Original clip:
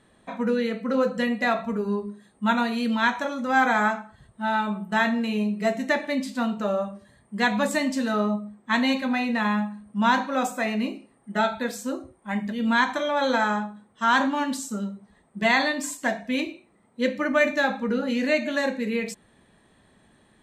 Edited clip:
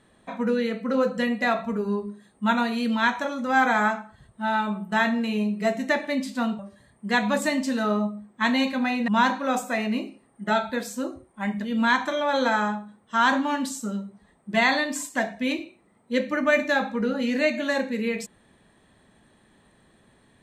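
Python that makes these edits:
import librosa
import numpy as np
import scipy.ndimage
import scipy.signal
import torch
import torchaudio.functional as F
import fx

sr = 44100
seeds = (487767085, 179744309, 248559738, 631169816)

y = fx.edit(x, sr, fx.cut(start_s=6.59, length_s=0.29),
    fx.cut(start_s=9.37, length_s=0.59), tone=tone)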